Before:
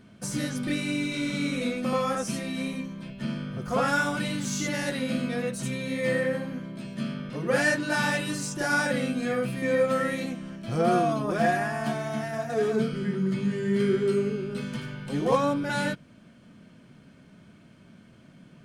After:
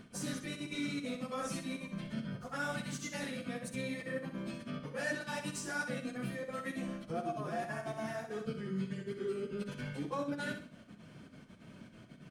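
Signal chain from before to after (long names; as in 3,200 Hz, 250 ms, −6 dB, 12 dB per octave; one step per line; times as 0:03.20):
mains-hum notches 60/120/180/240/300/360 Hz
reversed playback
downward compressor 6 to 1, threshold −36 dBFS, peak gain reduction 17 dB
reversed playback
gate pattern "x.xxxxx.xx." 180 BPM −24 dB
time stretch by phase vocoder 0.66×
repeating echo 63 ms, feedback 32%, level −8 dB
level +3.5 dB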